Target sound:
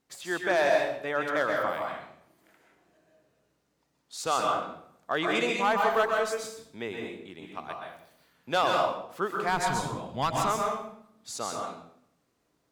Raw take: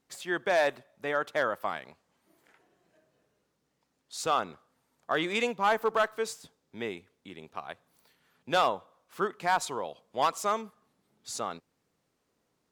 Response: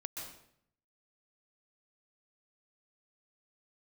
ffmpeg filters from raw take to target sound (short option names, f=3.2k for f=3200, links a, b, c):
-filter_complex "[0:a]asplit=3[a][b][c];[a]afade=t=out:st=9.48:d=0.02[d];[b]asubboost=boost=8.5:cutoff=160,afade=t=in:st=9.48:d=0.02,afade=t=out:st=10.46:d=0.02[e];[c]afade=t=in:st=10.46:d=0.02[f];[d][e][f]amix=inputs=3:normalize=0[g];[1:a]atrim=start_sample=2205[h];[g][h]afir=irnorm=-1:irlink=0,volume=3.5dB"